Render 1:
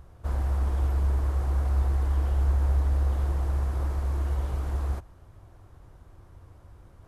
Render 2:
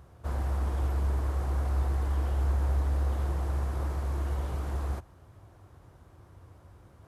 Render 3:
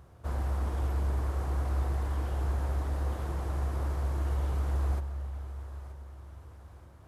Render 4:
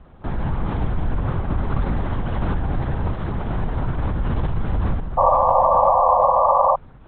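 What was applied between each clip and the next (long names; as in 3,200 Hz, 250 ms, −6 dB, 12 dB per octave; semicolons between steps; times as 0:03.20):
high-pass filter 73 Hz
feedback echo with a high-pass in the loop 927 ms, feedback 51%, high-pass 460 Hz, level −14 dB; convolution reverb RT60 5.3 s, pre-delay 90 ms, DRR 11 dB; level −1 dB
linear-prediction vocoder at 8 kHz whisper; sound drawn into the spectrogram noise, 0:05.17–0:06.76, 500–1,200 Hz −24 dBFS; level +8.5 dB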